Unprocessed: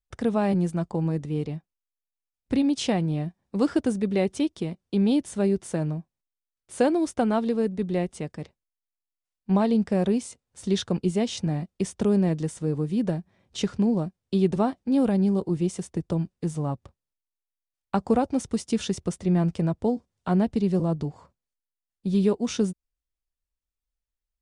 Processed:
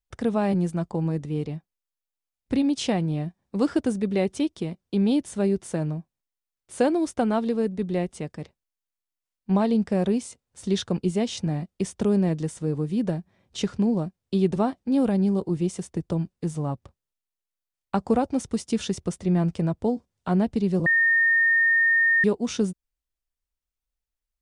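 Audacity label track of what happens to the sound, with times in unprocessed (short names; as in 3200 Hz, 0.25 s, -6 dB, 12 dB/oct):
20.860000	22.240000	bleep 1830 Hz -16.5 dBFS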